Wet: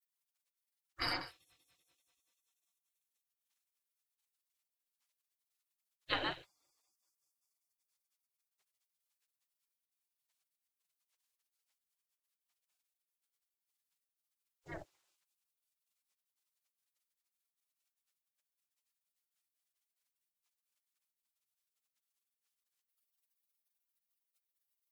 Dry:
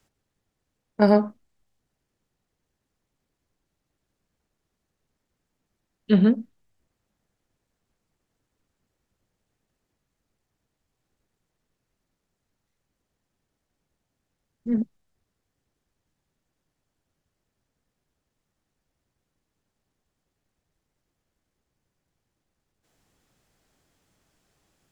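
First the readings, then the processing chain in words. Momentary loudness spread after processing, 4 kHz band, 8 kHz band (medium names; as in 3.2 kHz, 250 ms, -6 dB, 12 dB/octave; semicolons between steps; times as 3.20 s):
14 LU, +2.5 dB, no reading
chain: feedback echo behind a high-pass 193 ms, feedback 69%, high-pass 2.2 kHz, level -12 dB; spectral gate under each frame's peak -30 dB weak; trim +3.5 dB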